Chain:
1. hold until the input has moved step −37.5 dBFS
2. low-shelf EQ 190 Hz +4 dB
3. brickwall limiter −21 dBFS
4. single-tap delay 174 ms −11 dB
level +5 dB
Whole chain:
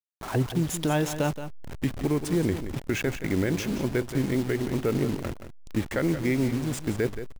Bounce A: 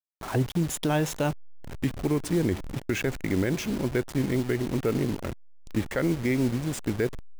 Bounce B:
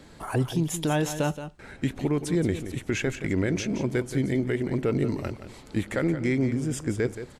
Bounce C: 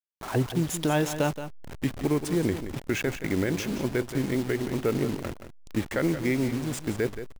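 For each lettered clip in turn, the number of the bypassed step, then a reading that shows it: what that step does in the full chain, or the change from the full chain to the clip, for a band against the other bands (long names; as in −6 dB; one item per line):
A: 4, change in crest factor −1.5 dB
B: 1, distortion level −13 dB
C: 2, 125 Hz band −2.0 dB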